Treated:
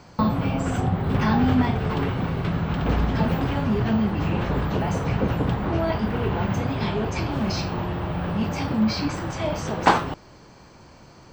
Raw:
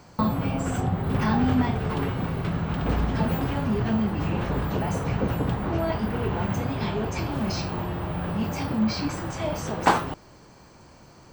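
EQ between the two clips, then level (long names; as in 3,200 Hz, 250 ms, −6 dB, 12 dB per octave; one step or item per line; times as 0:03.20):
high-frequency loss of the air 150 metres
high-shelf EQ 3,700 Hz +7 dB
high-shelf EQ 9,800 Hz +11.5 dB
+2.5 dB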